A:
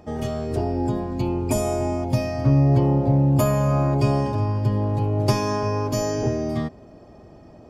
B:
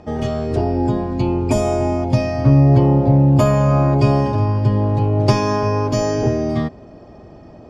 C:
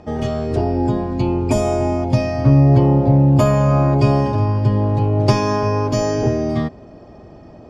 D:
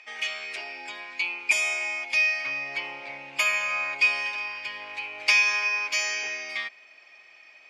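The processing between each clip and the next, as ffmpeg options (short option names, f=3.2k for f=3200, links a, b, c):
-af "lowpass=5.7k,volume=5.5dB"
-af anull
-af "highpass=f=2.3k:t=q:w=8.3"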